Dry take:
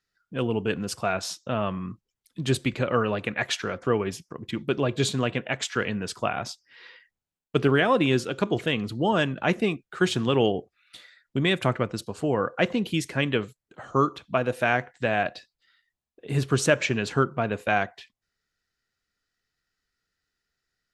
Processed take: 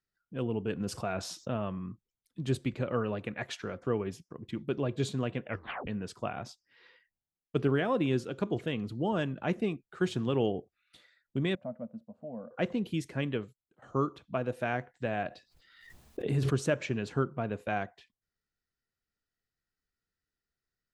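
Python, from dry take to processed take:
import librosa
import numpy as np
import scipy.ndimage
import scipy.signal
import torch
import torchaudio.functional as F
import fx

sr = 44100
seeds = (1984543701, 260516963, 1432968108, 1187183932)

y = fx.env_flatten(x, sr, amount_pct=50, at=(0.8, 1.57))
y = fx.double_bandpass(y, sr, hz=370.0, octaves=1.4, at=(11.55, 12.51))
y = fx.pre_swell(y, sr, db_per_s=44.0, at=(15.18, 16.49), fade=0.02)
y = fx.edit(y, sr, fx.tape_stop(start_s=5.46, length_s=0.41),
    fx.fade_out_to(start_s=13.27, length_s=0.55, floor_db=-15.5), tone=tone)
y = fx.tilt_shelf(y, sr, db=4.0, hz=790.0)
y = y * 10.0 ** (-9.0 / 20.0)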